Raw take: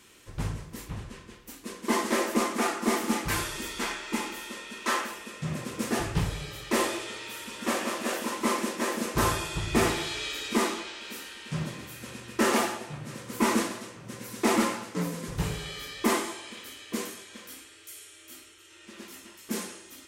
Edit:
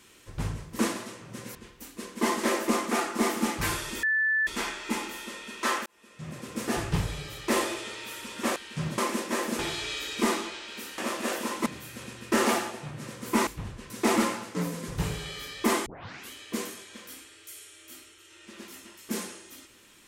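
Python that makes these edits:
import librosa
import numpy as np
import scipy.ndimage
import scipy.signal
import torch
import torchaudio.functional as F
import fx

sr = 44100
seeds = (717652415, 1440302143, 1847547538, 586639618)

y = fx.edit(x, sr, fx.swap(start_s=0.79, length_s=0.43, other_s=13.54, other_length_s=0.76),
    fx.insert_tone(at_s=3.7, length_s=0.44, hz=1750.0, db=-22.0),
    fx.fade_in_span(start_s=5.09, length_s=0.94),
    fx.swap(start_s=7.79, length_s=0.68, other_s=11.31, other_length_s=0.42),
    fx.cut(start_s=9.08, length_s=0.84),
    fx.tape_start(start_s=16.26, length_s=0.45), tone=tone)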